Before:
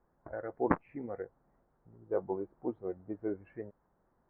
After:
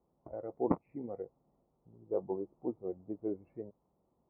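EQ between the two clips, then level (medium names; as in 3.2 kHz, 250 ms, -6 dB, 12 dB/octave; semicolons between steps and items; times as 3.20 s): boxcar filter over 27 samples; high-pass 65 Hz; peaking EQ 100 Hz -4.5 dB 0.28 oct; 0.0 dB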